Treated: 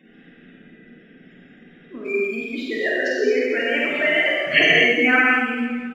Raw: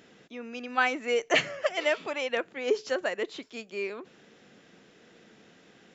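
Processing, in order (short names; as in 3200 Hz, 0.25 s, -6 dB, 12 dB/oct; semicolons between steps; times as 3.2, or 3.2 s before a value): whole clip reversed; spectral gate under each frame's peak -15 dB strong; graphic EQ 250/500/1000/2000 Hz +9/-5/-7/+7 dB; in parallel at -7 dB: backlash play -41 dBFS; on the sum: reverse bouncing-ball echo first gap 50 ms, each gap 1.4×, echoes 5; non-linear reverb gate 0.27 s flat, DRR -4 dB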